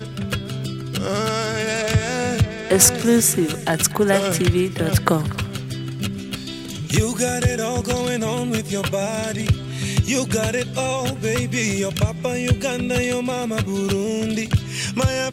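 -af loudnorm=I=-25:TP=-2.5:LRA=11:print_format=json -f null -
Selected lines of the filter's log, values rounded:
"input_i" : "-21.2",
"input_tp" : "-1.6",
"input_lra" : "3.9",
"input_thresh" : "-31.2",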